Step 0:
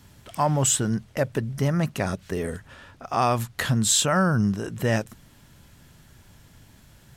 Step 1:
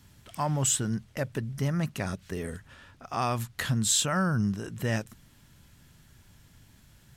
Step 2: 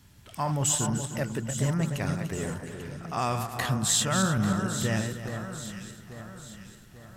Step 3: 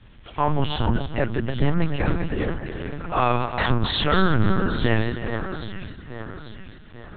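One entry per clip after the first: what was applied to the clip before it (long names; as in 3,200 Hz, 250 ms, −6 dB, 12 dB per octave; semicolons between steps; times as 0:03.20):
parametric band 590 Hz −4.5 dB 1.9 octaves; level −4 dB
feedback delay that plays each chunk backwards 151 ms, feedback 48%, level −7 dB; delay that swaps between a low-pass and a high-pass 421 ms, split 1,900 Hz, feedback 67%, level −7.5 dB
linear-prediction vocoder at 8 kHz pitch kept; level +8 dB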